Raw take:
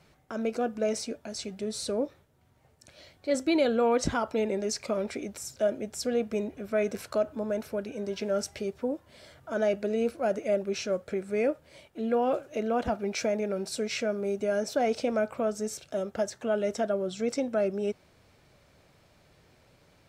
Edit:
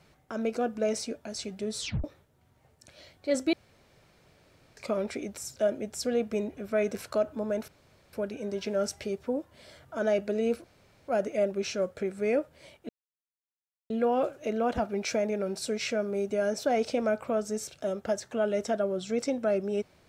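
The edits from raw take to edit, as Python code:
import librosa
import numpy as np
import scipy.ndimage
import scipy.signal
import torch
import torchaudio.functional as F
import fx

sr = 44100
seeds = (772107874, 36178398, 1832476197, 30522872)

y = fx.edit(x, sr, fx.tape_stop(start_s=1.78, length_s=0.26),
    fx.room_tone_fill(start_s=3.53, length_s=1.24),
    fx.insert_room_tone(at_s=7.68, length_s=0.45),
    fx.insert_room_tone(at_s=10.19, length_s=0.44),
    fx.insert_silence(at_s=12.0, length_s=1.01), tone=tone)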